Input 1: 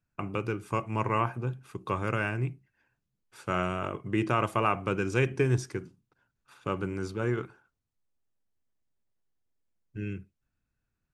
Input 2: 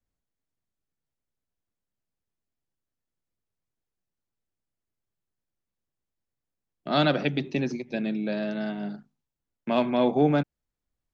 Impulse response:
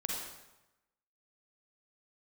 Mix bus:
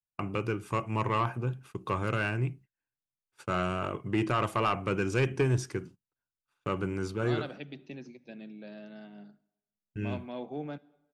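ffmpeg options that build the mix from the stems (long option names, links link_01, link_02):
-filter_complex "[0:a]agate=range=-24dB:threshold=-49dB:ratio=16:detection=peak,asoftclip=type=tanh:threshold=-19dB,volume=1dB[link_01];[1:a]adelay=350,volume=-17dB,asplit=2[link_02][link_03];[link_03]volume=-23dB[link_04];[2:a]atrim=start_sample=2205[link_05];[link_04][link_05]afir=irnorm=-1:irlink=0[link_06];[link_01][link_02][link_06]amix=inputs=3:normalize=0,equalizer=frequency=2900:width_type=o:width=0.23:gain=3"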